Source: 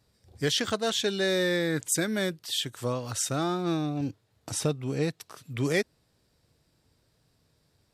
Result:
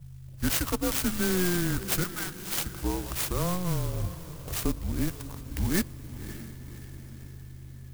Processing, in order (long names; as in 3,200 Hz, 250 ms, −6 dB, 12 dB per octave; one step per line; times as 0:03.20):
mains hum 50 Hz, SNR 14 dB
on a send at −24 dB: convolution reverb RT60 2.4 s, pre-delay 3 ms
on the sum: frequency shifter −180 Hz
0:02.04–0:02.65: Chebyshev high-pass filter 760 Hz, order 8
feedback delay with all-pass diffusion 567 ms, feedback 54%, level −13.5 dB
converter with an unsteady clock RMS 0.1 ms